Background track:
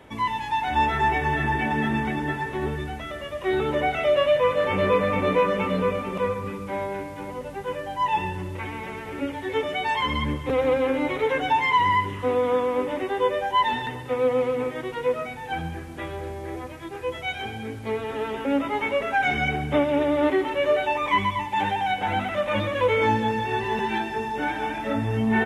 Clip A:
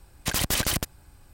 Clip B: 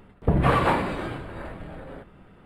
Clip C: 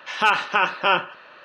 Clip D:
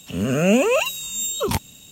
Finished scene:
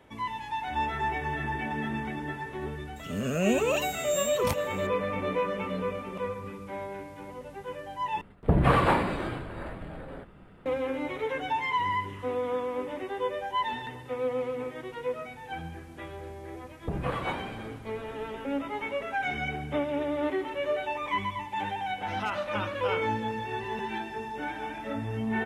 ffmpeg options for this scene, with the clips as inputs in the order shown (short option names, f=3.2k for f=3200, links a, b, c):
-filter_complex "[2:a]asplit=2[a][b];[0:a]volume=-8dB[c];[4:a]aecho=1:1:760:0.168[d];[3:a]equalizer=f=2.3k:w=1.5:g=-8.5[e];[c]asplit=2[f][g];[f]atrim=end=8.214[h];[a]atrim=end=2.45,asetpts=PTS-STARTPTS,volume=-1.5dB[i];[g]atrim=start=10.656[j];[d]atrim=end=1.91,asetpts=PTS-STARTPTS,volume=-9dB,afade=t=in:d=0.004:c=hsin,afade=t=out:st=1.906:d=0.004:c=hsin,adelay=2960[k];[b]atrim=end=2.45,asetpts=PTS-STARTPTS,volume=-12dB,afade=t=in:d=0.004:c=hsin,afade=t=out:st=2.446:d=0.004:c=hsin,adelay=16600[l];[e]atrim=end=1.44,asetpts=PTS-STARTPTS,volume=-13dB,afade=t=in:d=0.004:c=hsin,afade=t=out:st=1.436:d=0.004:c=hsin,adelay=22000[m];[h][i]acrossfade=d=0.004:c1=hsin:c2=hsin[n];[n][j]acrossfade=d=0.004:c1=hsin:c2=hsin[o];[o][k][l][m]amix=inputs=4:normalize=0"